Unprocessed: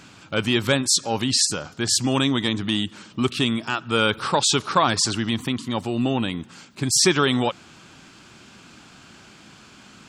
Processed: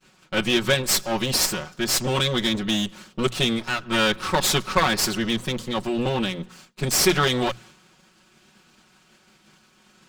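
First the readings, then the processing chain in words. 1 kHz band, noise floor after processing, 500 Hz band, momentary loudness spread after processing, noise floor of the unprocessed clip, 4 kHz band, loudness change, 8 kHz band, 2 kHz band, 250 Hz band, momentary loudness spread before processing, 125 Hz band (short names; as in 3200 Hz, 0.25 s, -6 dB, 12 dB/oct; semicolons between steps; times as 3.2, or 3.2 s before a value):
-1.5 dB, -59 dBFS, 0.0 dB, 8 LU, -49 dBFS, -0.5 dB, -1.0 dB, -2.5 dB, +1.0 dB, -2.5 dB, 8 LU, -1.5 dB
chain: minimum comb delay 5.4 ms; notches 60/120/180 Hz; expander -42 dBFS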